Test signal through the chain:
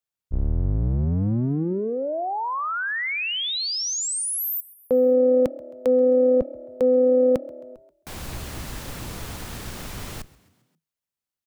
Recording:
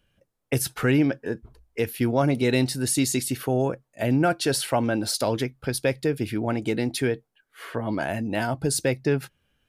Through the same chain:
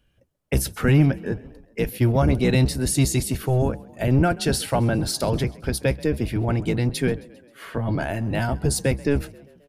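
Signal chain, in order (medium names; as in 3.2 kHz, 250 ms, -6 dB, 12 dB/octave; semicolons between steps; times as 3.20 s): octave divider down 1 oct, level +3 dB; frequency-shifting echo 133 ms, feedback 56%, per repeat +36 Hz, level -22 dB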